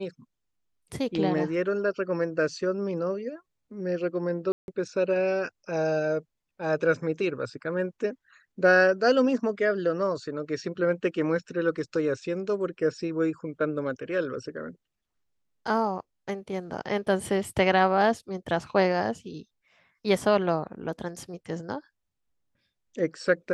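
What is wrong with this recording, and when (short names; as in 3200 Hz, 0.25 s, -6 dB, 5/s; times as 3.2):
4.52–4.68 gap 0.161 s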